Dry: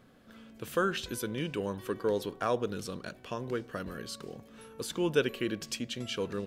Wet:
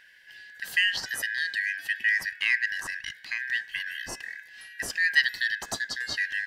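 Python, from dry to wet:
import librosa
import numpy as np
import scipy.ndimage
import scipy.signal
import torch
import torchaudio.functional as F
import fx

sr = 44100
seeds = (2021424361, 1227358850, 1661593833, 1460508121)

y = fx.band_shuffle(x, sr, order='4123')
y = F.gain(torch.from_numpy(y), 4.5).numpy()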